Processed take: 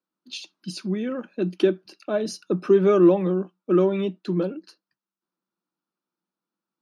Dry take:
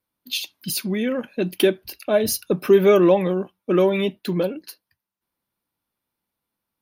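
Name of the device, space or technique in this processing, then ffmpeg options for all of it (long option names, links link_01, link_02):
television speaker: -af "highpass=frequency=170:width=0.5412,highpass=frequency=170:width=1.3066,equalizer=frequency=180:width_type=q:width=4:gain=9,equalizer=frequency=340:width_type=q:width=4:gain=9,equalizer=frequency=1300:width_type=q:width=4:gain=7,equalizer=frequency=2100:width_type=q:width=4:gain=-7,equalizer=frequency=3300:width_type=q:width=4:gain=-4,lowpass=frequency=7300:width=0.5412,lowpass=frequency=7300:width=1.3066,volume=-7dB"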